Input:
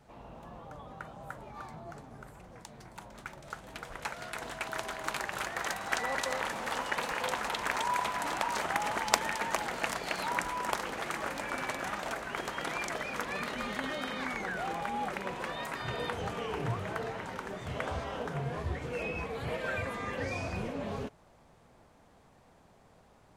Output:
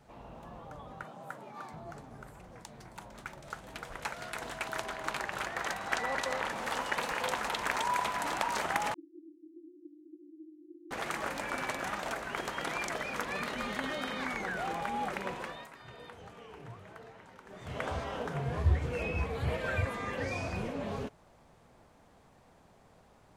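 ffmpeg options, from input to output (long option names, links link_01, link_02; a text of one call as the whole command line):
ffmpeg -i in.wav -filter_complex "[0:a]asettb=1/sr,asplit=3[link_01][link_02][link_03];[link_01]atrim=end=1.034[link_04];[link_02]atrim=start=1.03:end=1.73,asetpts=PTS-STARTPTS,afade=type=in:duration=0.004:curve=qsin,afade=type=out:start_time=0.696:duration=0.004:curve=qsin,highpass=frequency=150:width=0.5412,highpass=frequency=150:width=1.3066[link_05];[link_03]atrim=start=1.726[link_06];[link_04][link_05]acrossfade=duration=0.004:curve1=hsin:curve2=qsin[link_07];[link_07][link_06]acrossfade=duration=0.004:curve1=qsin:curve2=hsin,asettb=1/sr,asplit=3[link_08][link_09][link_10];[link_08]atrim=end=4.824[link_11];[link_09]atrim=start=4.82:end=6.58,asetpts=PTS-STARTPTS,afade=type=in:duration=0.004:curve=qsin,afade=type=out:start_time=1.756:duration=0.004:curve=qsin,highshelf=frequency=6100:gain=-6.5[link_12];[link_10]atrim=start=6.576[link_13];[link_11][link_12]acrossfade=duration=0.004:curve1=hsin:curve2=qsin[link_14];[link_14][link_13]acrossfade=duration=0.004:curve1=qsin:curve2=hsin,asettb=1/sr,asplit=3[link_15][link_16][link_17];[link_15]atrim=end=8.944[link_18];[link_16]atrim=start=8.94:end=10.91,asetpts=PTS-STARTPTS,afade=type=in:duration=0.004:curve=qsin,afade=type=out:start_time=1.966:duration=0.004:curve=qsin,asuperpass=centerf=320:order=12:qfactor=4.6[link_19];[link_17]atrim=start=10.906[link_20];[link_18][link_19]acrossfade=duration=0.004:curve1=hsin:curve2=qsin[link_21];[link_21][link_20]acrossfade=duration=0.004:curve1=qsin:curve2=hsin,asettb=1/sr,asplit=3[link_22][link_23][link_24];[link_22]atrim=end=18.484[link_25];[link_23]atrim=start=18.48:end=19.85,asetpts=PTS-STARTPTS,afade=type=in:duration=0.004:curve=qsin,afade=type=out:start_time=1.366:duration=0.004:curve=qsin,equalizer=frequency=77:width=1.2:gain=11.5[link_26];[link_24]atrim=start=19.846[link_27];[link_25][link_26]acrossfade=duration=0.004:curve1=hsin:curve2=qsin[link_28];[link_28][link_27]acrossfade=duration=0.004:curve1=qsin:curve2=hsin,asplit=3[link_29][link_30][link_31];[link_29]atrim=end=15.7,asetpts=PTS-STARTPTS,afade=type=out:start_time=15.29:duration=0.41:silence=0.199526[link_32];[link_30]atrim=start=15.7:end=17.45,asetpts=PTS-STARTPTS,volume=-14dB[link_33];[link_31]atrim=start=17.45,asetpts=PTS-STARTPTS,afade=type=in:duration=0.41:silence=0.199526[link_34];[link_32][link_33][link_34]concat=n=3:v=0:a=1" out.wav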